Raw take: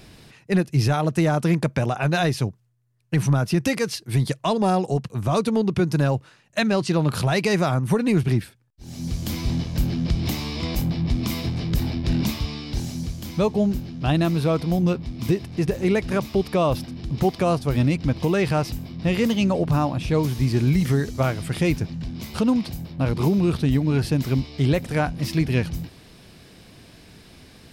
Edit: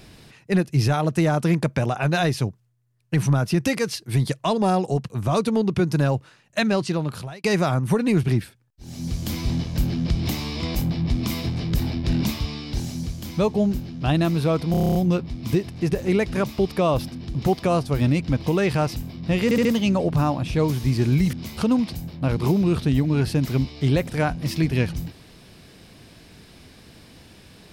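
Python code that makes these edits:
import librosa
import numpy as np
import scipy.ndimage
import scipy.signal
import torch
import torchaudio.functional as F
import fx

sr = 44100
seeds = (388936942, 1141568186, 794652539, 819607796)

y = fx.edit(x, sr, fx.fade_out_span(start_s=6.73, length_s=0.71),
    fx.stutter(start_s=14.71, slice_s=0.03, count=9),
    fx.stutter(start_s=19.2, slice_s=0.07, count=4),
    fx.cut(start_s=20.88, length_s=1.22), tone=tone)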